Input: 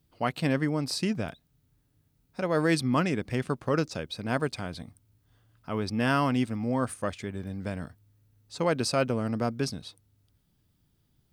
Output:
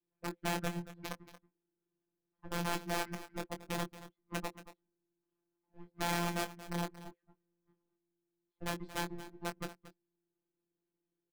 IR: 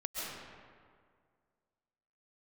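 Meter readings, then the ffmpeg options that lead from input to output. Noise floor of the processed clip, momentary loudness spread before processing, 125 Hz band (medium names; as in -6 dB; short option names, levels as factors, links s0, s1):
under -85 dBFS, 14 LU, -13.0 dB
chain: -filter_complex "[0:a]aeval=exprs='val(0)+0.5*0.0376*sgn(val(0))':c=same,agate=range=0.00355:threshold=0.0794:ratio=16:detection=peak,lowpass=1900,adynamicequalizer=threshold=0.00562:dfrequency=260:dqfactor=1.2:tfrequency=260:tqfactor=1.2:attack=5:release=100:ratio=0.375:range=2:mode=boostabove:tftype=bell,acrossover=split=350|1400[s0][s1][s2];[s0]acompressor=threshold=0.0282:ratio=4[s3];[s1]acompressor=threshold=0.0126:ratio=4[s4];[s2]acompressor=threshold=0.00708:ratio=4[s5];[s3][s4][s5]amix=inputs=3:normalize=0,afreqshift=-470,aeval=exprs='(mod(21.1*val(0)+1,2)-1)/21.1':c=same,afftfilt=real='hypot(re,im)*cos(PI*b)':imag='0':win_size=1024:overlap=0.75,asplit=2[s6][s7];[s7]adelay=22,volume=0.398[s8];[s6][s8]amix=inputs=2:normalize=0,aecho=1:1:229:0.178"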